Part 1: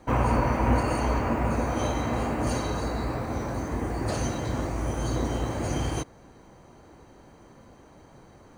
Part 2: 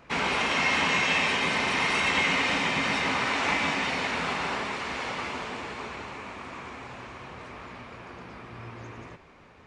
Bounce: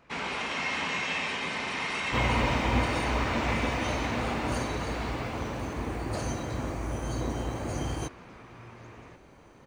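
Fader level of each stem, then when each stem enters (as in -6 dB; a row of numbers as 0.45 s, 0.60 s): -4.0 dB, -6.5 dB; 2.05 s, 0.00 s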